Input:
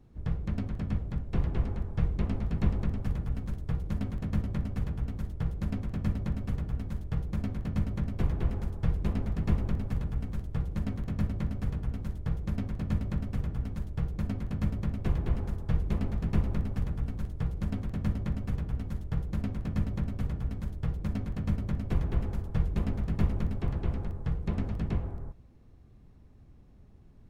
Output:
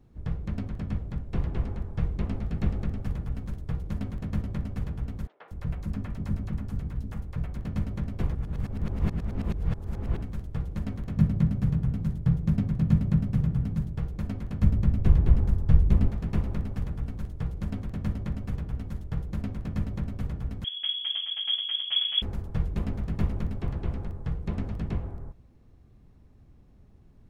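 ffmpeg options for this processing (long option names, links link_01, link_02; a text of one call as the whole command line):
ffmpeg -i in.wav -filter_complex "[0:a]asettb=1/sr,asplit=3[link_01][link_02][link_03];[link_01]atrim=end=2.384[link_04];[link_02]atrim=start=2.38:end=3.05,asetpts=PTS-STARTPTS,afade=type=in:duration=0.004:curve=qsin,afade=type=out:start_time=0.666:duration=0.004:curve=qsin,bandreject=frequency=1000:width=10[link_05];[link_03]atrim=start=3.046[link_06];[link_04][link_05]acrossfade=duration=0.004:curve1=hsin:curve2=qsin[link_07];[link_07][link_06]acrossfade=duration=0.004:curve1=qsin:curve2=hsin,asettb=1/sr,asplit=3[link_08][link_09][link_10];[link_08]atrim=end=5.274[link_11];[link_09]atrim=start=5.27:end=7.56,asetpts=PTS-STARTPTS,afade=type=in:duration=0.004:curve=qsin,afade=type=out:start_time=2.286:duration=0.004:curve=qsin,acrossover=split=480|3500[link_12][link_13][link_14];[link_14]adelay=210[link_15];[link_12]adelay=240[link_16];[link_16][link_13][link_15]amix=inputs=3:normalize=0,atrim=end_sample=100989[link_17];[link_10]atrim=start=7.556[link_18];[link_11][link_17]acrossfade=duration=0.004:curve1=hsin:curve2=qsin[link_19];[link_19][link_18]acrossfade=duration=0.004:curve1=qsin:curve2=hsin,asettb=1/sr,asplit=3[link_20][link_21][link_22];[link_20]atrim=end=11.174[link_23];[link_21]atrim=start=11.17:end=13.98,asetpts=PTS-STARTPTS,afade=type=in:duration=0.004:curve=qsin,afade=type=out:start_time=2.806:duration=0.004:curve=qsin,equalizer=frequency=150:width=1.5:gain=14[link_24];[link_22]atrim=start=13.976[link_25];[link_23][link_24]acrossfade=duration=0.004:curve1=hsin:curve2=qsin[link_26];[link_26][link_25]acrossfade=duration=0.004:curve1=qsin:curve2=hsin,asettb=1/sr,asplit=3[link_27][link_28][link_29];[link_27]atrim=end=14.624[link_30];[link_28]atrim=start=14.62:end=16.09,asetpts=PTS-STARTPTS,afade=type=in:duration=0.004:curve=qsin,afade=type=out:start_time=1.466:duration=0.004:curve=qsin,lowshelf=frequency=200:gain=10.5[link_31];[link_29]atrim=start=16.086[link_32];[link_30][link_31]acrossfade=duration=0.004:curve1=hsin:curve2=qsin[link_33];[link_33][link_32]acrossfade=duration=0.004:curve1=qsin:curve2=hsin,asettb=1/sr,asplit=3[link_34][link_35][link_36];[link_34]atrim=end=20.644[link_37];[link_35]atrim=start=20.64:end=22.22,asetpts=PTS-STARTPTS,afade=type=in:duration=0.004:curve=qsin,afade=type=out:start_time=1.576:duration=0.004:curve=qsin,lowpass=frequency=2900:width_type=q:width=0.5098,lowpass=frequency=2900:width_type=q:width=0.6013,lowpass=frequency=2900:width_type=q:width=0.9,lowpass=frequency=2900:width_type=q:width=2.563,afreqshift=-3400[link_38];[link_36]atrim=start=22.216[link_39];[link_37][link_38]acrossfade=duration=0.004:curve1=hsin:curve2=qsin[link_40];[link_40][link_39]acrossfade=duration=0.004:curve1=qsin:curve2=hsin,asplit=3[link_41][link_42][link_43];[link_41]atrim=end=8.352[link_44];[link_42]atrim=start=8.348:end=10.222,asetpts=PTS-STARTPTS,areverse[link_45];[link_43]atrim=start=10.218[link_46];[link_44][link_45]acrossfade=duration=0.004:curve1=hsin:curve2=hsin[link_47];[link_47][link_46]acrossfade=duration=0.004:curve1=hsin:curve2=hsin" out.wav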